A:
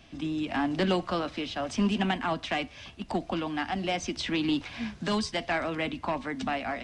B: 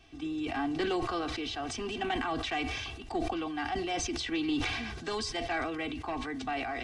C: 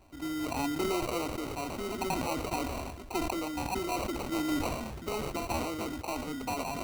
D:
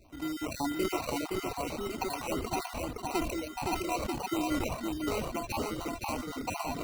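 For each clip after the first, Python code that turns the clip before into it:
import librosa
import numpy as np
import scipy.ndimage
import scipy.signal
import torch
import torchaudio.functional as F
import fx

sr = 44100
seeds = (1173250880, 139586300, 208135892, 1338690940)

y1 = x + 0.84 * np.pad(x, (int(2.6 * sr / 1000.0), 0))[:len(x)]
y1 = fx.sustainer(y1, sr, db_per_s=29.0)
y1 = y1 * 10.0 ** (-7.0 / 20.0)
y2 = fx.sample_hold(y1, sr, seeds[0], rate_hz=1700.0, jitter_pct=0)
y3 = fx.spec_dropout(y2, sr, seeds[1], share_pct=25)
y3 = fx.dereverb_blind(y3, sr, rt60_s=1.6)
y3 = y3 + 10.0 ** (-3.5 / 20.0) * np.pad(y3, (int(517 * sr / 1000.0), 0))[:len(y3)]
y3 = y3 * 10.0 ** (1.5 / 20.0)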